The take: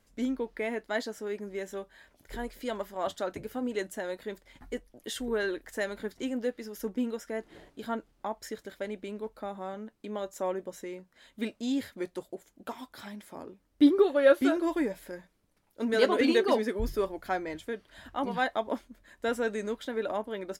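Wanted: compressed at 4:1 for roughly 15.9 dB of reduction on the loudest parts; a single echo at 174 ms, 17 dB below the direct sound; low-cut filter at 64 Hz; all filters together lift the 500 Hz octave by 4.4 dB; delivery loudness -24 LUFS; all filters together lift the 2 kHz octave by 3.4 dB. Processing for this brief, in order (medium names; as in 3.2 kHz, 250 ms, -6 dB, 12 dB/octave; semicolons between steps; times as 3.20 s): high-pass 64 Hz; peaking EQ 500 Hz +5 dB; peaking EQ 2 kHz +4 dB; compression 4:1, threshold -31 dBFS; delay 174 ms -17 dB; trim +12.5 dB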